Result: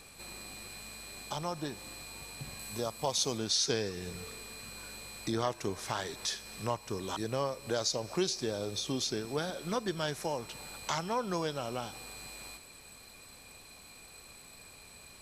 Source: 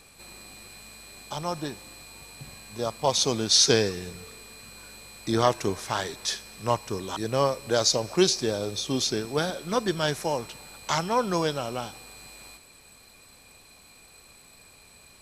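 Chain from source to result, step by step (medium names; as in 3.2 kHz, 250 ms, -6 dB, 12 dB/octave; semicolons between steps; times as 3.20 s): compression 2:1, threshold -36 dBFS, peak gain reduction 11.5 dB; 2.59–3.38 s: treble shelf 8.4 kHz +9 dB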